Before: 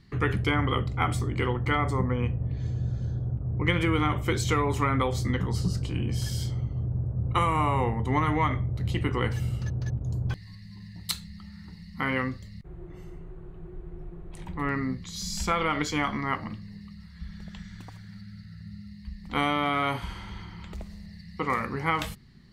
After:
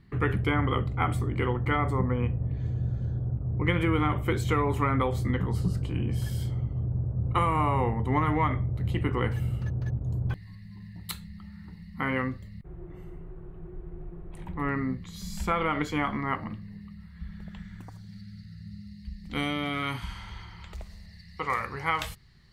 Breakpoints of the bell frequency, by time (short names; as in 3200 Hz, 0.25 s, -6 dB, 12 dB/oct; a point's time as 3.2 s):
bell -12.5 dB 1.3 oct
17.75 s 5600 Hz
18.19 s 960 Hz
19.72 s 960 Hz
20.35 s 240 Hz